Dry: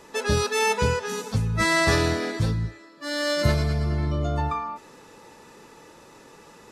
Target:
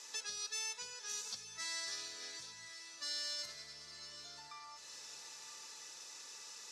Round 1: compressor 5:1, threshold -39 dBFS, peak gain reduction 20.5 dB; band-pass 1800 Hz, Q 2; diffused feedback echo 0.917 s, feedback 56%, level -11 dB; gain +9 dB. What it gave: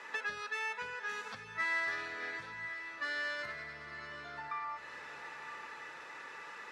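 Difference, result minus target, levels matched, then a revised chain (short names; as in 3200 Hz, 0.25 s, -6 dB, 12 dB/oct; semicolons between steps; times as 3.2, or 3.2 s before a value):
8000 Hz band -20.0 dB
compressor 5:1, threshold -39 dBFS, peak gain reduction 20.5 dB; band-pass 5800 Hz, Q 2; diffused feedback echo 0.917 s, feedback 56%, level -11 dB; gain +9 dB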